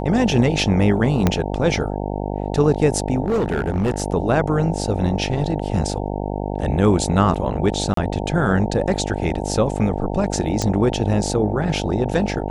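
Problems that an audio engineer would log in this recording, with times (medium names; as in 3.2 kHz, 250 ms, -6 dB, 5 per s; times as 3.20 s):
buzz 50 Hz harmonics 18 -25 dBFS
1.27 s: pop -3 dBFS
3.26–4.02 s: clipped -15.5 dBFS
7.94–7.97 s: dropout 33 ms
10.62 s: pop -8 dBFS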